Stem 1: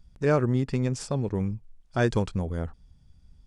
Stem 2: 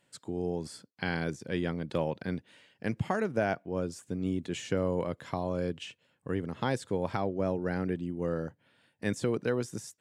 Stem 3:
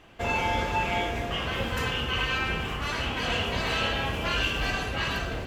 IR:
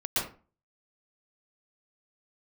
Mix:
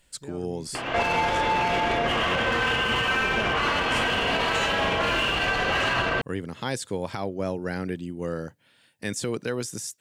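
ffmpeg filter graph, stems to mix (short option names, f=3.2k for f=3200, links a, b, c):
-filter_complex "[0:a]acompressor=threshold=-24dB:ratio=6,volume=-15dB[a];[1:a]highshelf=f=2.4k:g=11.5,volume=1dB[b];[2:a]lowpass=6.7k,asplit=2[c][d];[d]highpass=f=720:p=1,volume=22dB,asoftclip=type=tanh:threshold=-14dB[e];[c][e]amix=inputs=2:normalize=0,lowpass=f=1.8k:p=1,volume=-6dB,acompressor=mode=upward:threshold=-28dB:ratio=2.5,adelay=750,volume=1dB,asplit=2[f][g];[g]volume=-6dB[h];[3:a]atrim=start_sample=2205[i];[h][i]afir=irnorm=-1:irlink=0[j];[a][b][f][j]amix=inputs=4:normalize=0,alimiter=limit=-16dB:level=0:latency=1:release=83"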